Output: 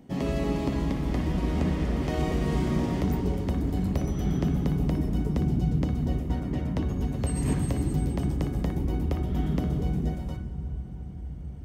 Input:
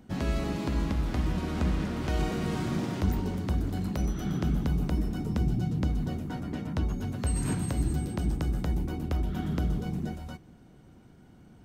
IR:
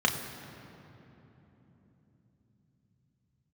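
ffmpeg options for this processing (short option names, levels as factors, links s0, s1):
-filter_complex "[0:a]asplit=2[s0][s1];[1:a]atrim=start_sample=2205,asetrate=24255,aresample=44100[s2];[s1][s2]afir=irnorm=-1:irlink=0,volume=0.112[s3];[s0][s3]amix=inputs=2:normalize=0"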